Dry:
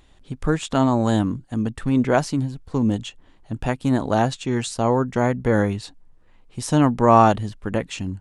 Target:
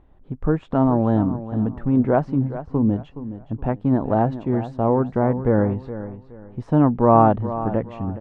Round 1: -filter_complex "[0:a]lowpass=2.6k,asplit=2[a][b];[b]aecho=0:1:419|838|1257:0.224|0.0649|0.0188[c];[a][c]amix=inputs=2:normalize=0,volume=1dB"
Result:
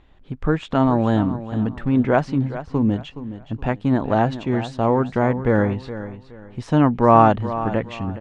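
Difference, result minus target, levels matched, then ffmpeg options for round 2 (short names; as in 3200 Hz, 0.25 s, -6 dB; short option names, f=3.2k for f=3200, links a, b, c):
2000 Hz band +8.0 dB
-filter_complex "[0:a]lowpass=1k,asplit=2[a][b];[b]aecho=0:1:419|838|1257:0.224|0.0649|0.0188[c];[a][c]amix=inputs=2:normalize=0,volume=1dB"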